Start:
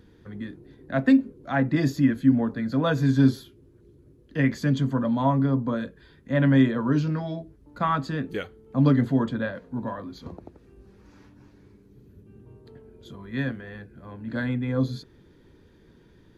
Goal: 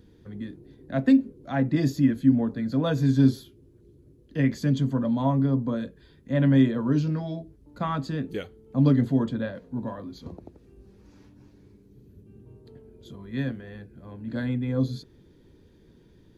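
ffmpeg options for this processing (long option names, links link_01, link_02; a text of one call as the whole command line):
ffmpeg -i in.wav -af "equalizer=frequency=1400:width=0.79:gain=-7" out.wav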